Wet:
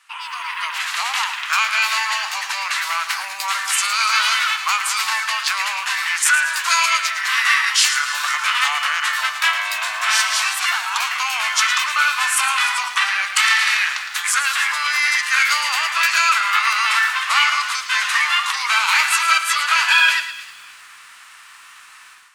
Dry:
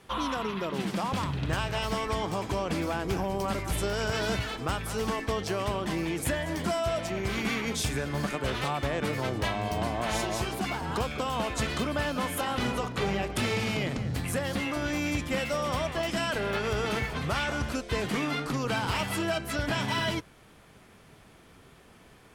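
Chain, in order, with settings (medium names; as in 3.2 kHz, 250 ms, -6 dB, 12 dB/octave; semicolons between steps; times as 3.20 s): level rider gain up to 13 dB; feedback echo behind a high-pass 307 ms, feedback 34%, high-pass 2.7 kHz, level -16 dB; formant shift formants -3 st; steep high-pass 1.1 kHz 36 dB/octave; bit-crushed delay 111 ms, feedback 35%, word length 8-bit, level -10.5 dB; trim +5 dB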